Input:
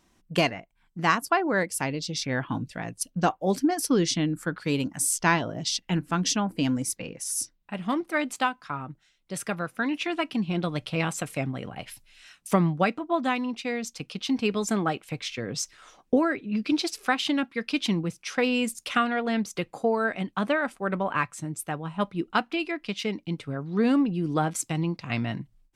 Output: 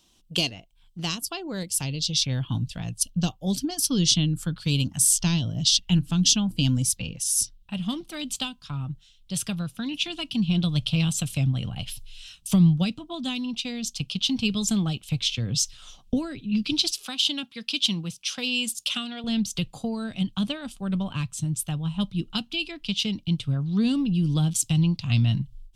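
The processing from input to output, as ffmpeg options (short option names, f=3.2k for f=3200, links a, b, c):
-filter_complex "[0:a]asettb=1/sr,asplit=3[a][b][c];[a]atrim=end=16.914[d];[b]atrim=start=16.91:end=19.24,asetpts=PTS-STARTPTS,afade=t=in:d=0.004:c=qsin,afade=t=out:st=2.326:d=0.004:c=qsin,highpass=f=440:p=1[e];[c]atrim=start=19.236[f];[d][e]acrossfade=d=0.004:c1=hsin:c2=qsin[g];[g][f]acrossfade=d=0.004:c1=qsin:c2=hsin,asubboost=boost=12:cutoff=110,acrossover=split=420|3000[h][i][j];[i]acompressor=threshold=-37dB:ratio=4[k];[h][k][j]amix=inputs=3:normalize=0,highshelf=f=2.5k:t=q:w=3:g=7.5,volume=-2dB"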